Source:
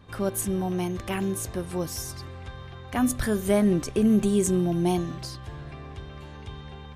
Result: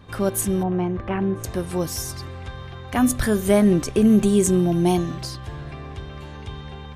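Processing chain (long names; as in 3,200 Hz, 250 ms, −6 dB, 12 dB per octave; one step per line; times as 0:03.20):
0:00.63–0:01.44: low-pass filter 1,700 Hz 12 dB per octave
level +5 dB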